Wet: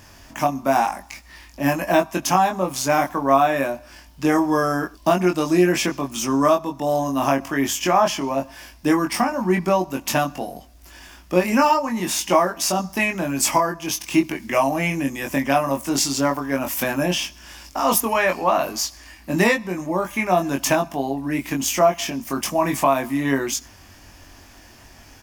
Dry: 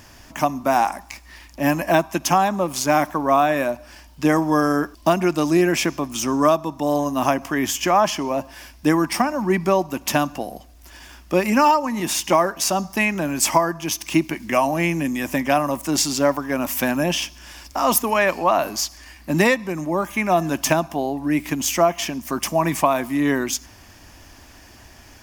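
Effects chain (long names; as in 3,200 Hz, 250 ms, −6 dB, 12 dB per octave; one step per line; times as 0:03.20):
double-tracking delay 22 ms −3.5 dB
level −2 dB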